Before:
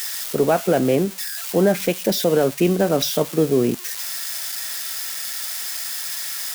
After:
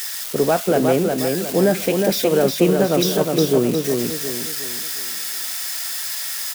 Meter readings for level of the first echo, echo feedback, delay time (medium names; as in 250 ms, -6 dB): -4.0 dB, 39%, 361 ms